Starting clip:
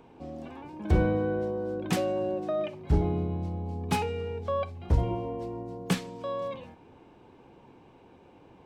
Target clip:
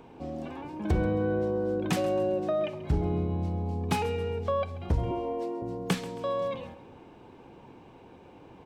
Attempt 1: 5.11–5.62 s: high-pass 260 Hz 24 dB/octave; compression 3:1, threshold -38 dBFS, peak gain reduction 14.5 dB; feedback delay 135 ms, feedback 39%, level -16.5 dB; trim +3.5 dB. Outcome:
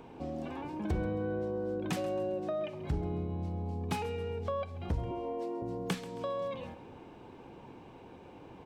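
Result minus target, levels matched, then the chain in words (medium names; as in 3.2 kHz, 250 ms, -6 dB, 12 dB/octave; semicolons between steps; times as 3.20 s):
compression: peak gain reduction +6.5 dB
5.11–5.62 s: high-pass 260 Hz 24 dB/octave; compression 3:1, threshold -28 dBFS, peak gain reduction 8 dB; feedback delay 135 ms, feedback 39%, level -16.5 dB; trim +3.5 dB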